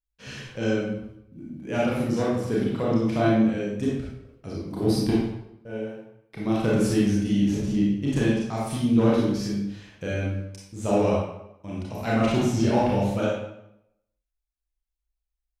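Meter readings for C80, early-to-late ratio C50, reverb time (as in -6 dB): 3.5 dB, -1.0 dB, 0.80 s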